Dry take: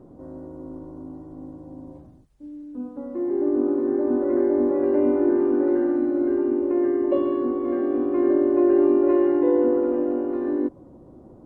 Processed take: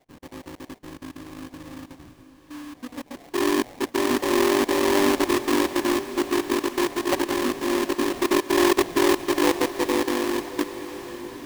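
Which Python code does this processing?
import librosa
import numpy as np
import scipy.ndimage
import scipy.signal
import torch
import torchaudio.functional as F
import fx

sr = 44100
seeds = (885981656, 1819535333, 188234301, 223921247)

y = fx.spec_dropout(x, sr, seeds[0], share_pct=30)
y = fx.sample_hold(y, sr, seeds[1], rate_hz=1400.0, jitter_pct=20)
y = fx.echo_diffused(y, sr, ms=853, feedback_pct=50, wet_db=-13)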